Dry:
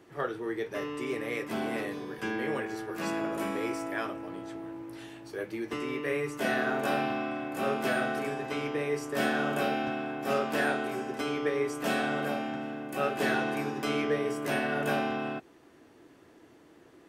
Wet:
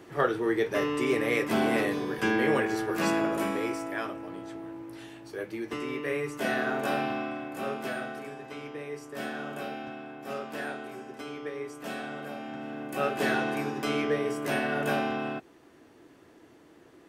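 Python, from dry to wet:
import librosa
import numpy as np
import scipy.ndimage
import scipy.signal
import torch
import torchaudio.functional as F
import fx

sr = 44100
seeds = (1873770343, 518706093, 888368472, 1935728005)

y = fx.gain(x, sr, db=fx.line((2.96, 7.0), (3.85, 0.0), (7.19, 0.0), (8.23, -7.5), (12.3, -7.5), (12.82, 1.0)))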